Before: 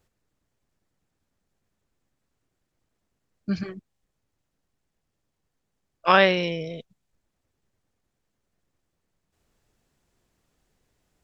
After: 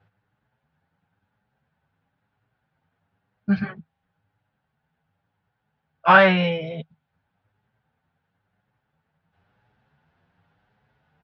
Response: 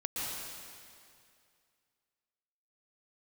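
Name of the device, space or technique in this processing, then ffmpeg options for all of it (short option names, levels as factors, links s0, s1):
barber-pole flanger into a guitar amplifier: -filter_complex "[0:a]asplit=2[s0][s1];[s1]adelay=8.1,afreqshift=0.96[s2];[s0][s2]amix=inputs=2:normalize=1,asoftclip=type=tanh:threshold=0.141,highpass=76,equalizer=f=100:t=q:w=4:g=9,equalizer=f=160:t=q:w=4:g=8,equalizer=f=340:t=q:w=4:g=-8,equalizer=f=830:t=q:w=4:g=10,equalizer=f=1500:t=q:w=4:g=10,lowpass=f=3500:w=0.5412,lowpass=f=3500:w=1.3066,volume=2.11"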